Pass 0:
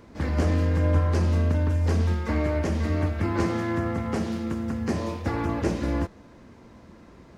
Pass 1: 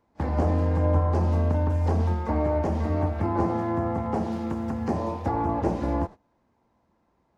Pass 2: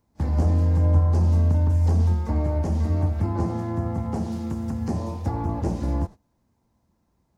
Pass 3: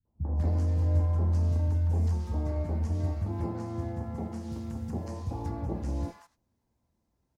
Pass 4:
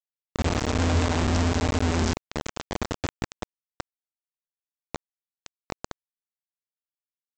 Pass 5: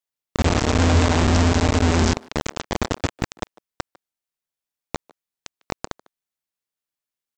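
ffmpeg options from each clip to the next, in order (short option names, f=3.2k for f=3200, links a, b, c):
-filter_complex "[0:a]agate=range=-21dB:threshold=-36dB:ratio=16:detection=peak,equalizer=f=830:w=1.9:g=11,acrossover=split=1100[a][b];[b]acompressor=threshold=-45dB:ratio=6[c];[a][c]amix=inputs=2:normalize=0,volume=-1dB"
-af "bass=f=250:g=11,treble=f=4k:g=14,volume=-6dB"
-filter_complex "[0:a]acrossover=split=190|1100[a][b][c];[b]adelay=50[d];[c]adelay=200[e];[a][d][e]amix=inputs=3:normalize=0,volume=-6.5dB"
-af "aeval=exprs='val(0)+0.00447*(sin(2*PI*50*n/s)+sin(2*PI*2*50*n/s)/2+sin(2*PI*3*50*n/s)/3+sin(2*PI*4*50*n/s)/4+sin(2*PI*5*50*n/s)/5)':c=same,aresample=16000,acrusher=bits=3:mix=0:aa=0.000001,aresample=44100"
-filter_complex "[0:a]asplit=2[a][b];[b]adelay=150,highpass=300,lowpass=3.4k,asoftclip=type=hard:threshold=-24dB,volume=-19dB[c];[a][c]amix=inputs=2:normalize=0,volume=6dB"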